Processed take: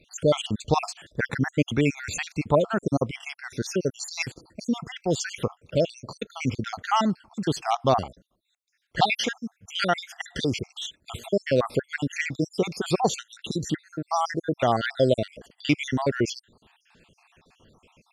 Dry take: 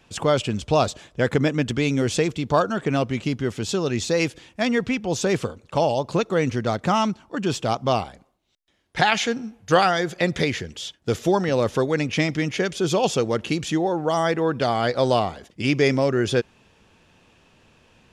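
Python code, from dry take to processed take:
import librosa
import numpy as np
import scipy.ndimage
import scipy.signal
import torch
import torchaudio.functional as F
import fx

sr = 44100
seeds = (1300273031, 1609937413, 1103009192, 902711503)

y = fx.spec_dropout(x, sr, seeds[0], share_pct=64)
y = y * librosa.db_to_amplitude(1.0)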